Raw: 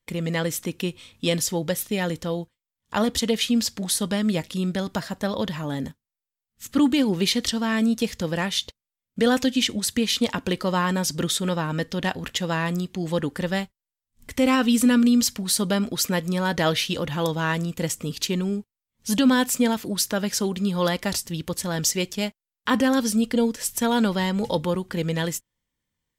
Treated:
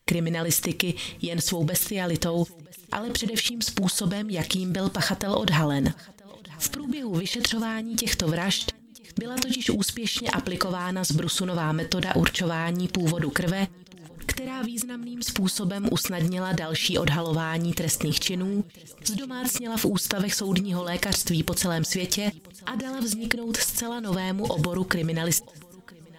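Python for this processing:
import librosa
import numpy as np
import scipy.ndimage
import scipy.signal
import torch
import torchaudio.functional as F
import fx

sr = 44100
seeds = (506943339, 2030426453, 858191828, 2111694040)

y = fx.over_compress(x, sr, threshold_db=-32.0, ratio=-1.0)
y = fx.echo_feedback(y, sr, ms=973, feedback_pct=48, wet_db=-23)
y = F.gain(torch.from_numpy(y), 5.0).numpy()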